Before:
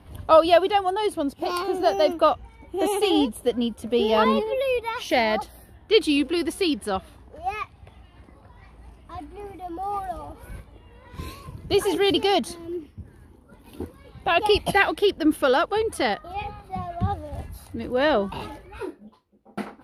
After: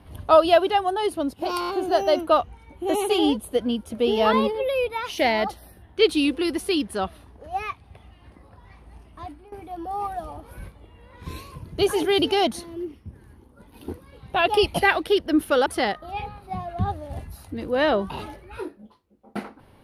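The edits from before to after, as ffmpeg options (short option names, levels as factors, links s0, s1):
-filter_complex "[0:a]asplit=7[s0][s1][s2][s3][s4][s5][s6];[s0]atrim=end=1.622[s7];[s1]atrim=start=1.598:end=1.622[s8];[s2]atrim=start=1.598:end=1.622[s9];[s3]atrim=start=1.598:end=1.622[s10];[s4]atrim=start=1.598:end=9.44,asetpts=PTS-STARTPTS,afade=t=out:st=7.572:d=0.27:silence=0.149624[s11];[s5]atrim=start=9.44:end=15.582,asetpts=PTS-STARTPTS,afade=t=in:d=0.004:c=hsin:silence=0.149624[s12];[s6]atrim=start=15.878[s13];[s7][s8]acrossfade=d=0.004:c1=hsin:c2=hsin[s14];[s14][s9]acrossfade=d=0.004:c1=hsin:c2=hsin[s15];[s15][s10]acrossfade=d=0.004:c1=hsin:c2=hsin[s16];[s11][s12]concat=n=2:v=0:a=1[s17];[s16][s17]acrossfade=d=0.004:c1=hsin:c2=hsin[s18];[s18][s13]acrossfade=d=0.004:c1=hsin:c2=hsin"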